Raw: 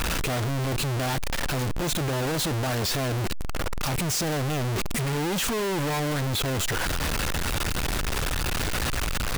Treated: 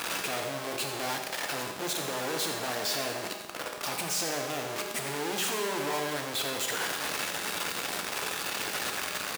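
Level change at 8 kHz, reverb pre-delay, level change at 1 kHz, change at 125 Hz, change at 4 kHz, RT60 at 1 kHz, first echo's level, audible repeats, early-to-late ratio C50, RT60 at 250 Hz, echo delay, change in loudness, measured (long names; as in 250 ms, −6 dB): −2.5 dB, 5 ms, −3.0 dB, −19.0 dB, −2.5 dB, 1.2 s, −11.0 dB, 1, 4.0 dB, 1.2 s, 87 ms, −4.5 dB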